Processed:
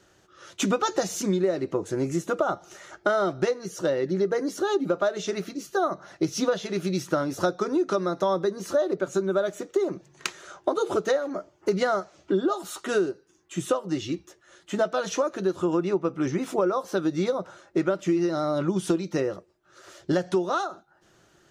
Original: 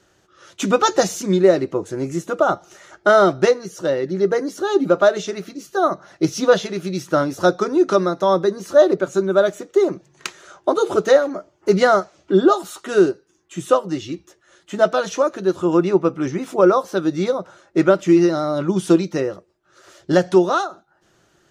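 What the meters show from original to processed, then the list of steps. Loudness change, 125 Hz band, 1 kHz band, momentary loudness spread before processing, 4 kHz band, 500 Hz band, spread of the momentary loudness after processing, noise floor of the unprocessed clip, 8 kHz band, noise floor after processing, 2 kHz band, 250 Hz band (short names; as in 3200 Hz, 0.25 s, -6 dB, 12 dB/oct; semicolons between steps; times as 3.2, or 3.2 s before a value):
-8.5 dB, -6.0 dB, -8.5 dB, 11 LU, -6.0 dB, -8.5 dB, 7 LU, -60 dBFS, -4.5 dB, -62 dBFS, -8.0 dB, -7.5 dB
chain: compressor 6:1, threshold -20 dBFS, peak gain reduction 12.5 dB; gain -1 dB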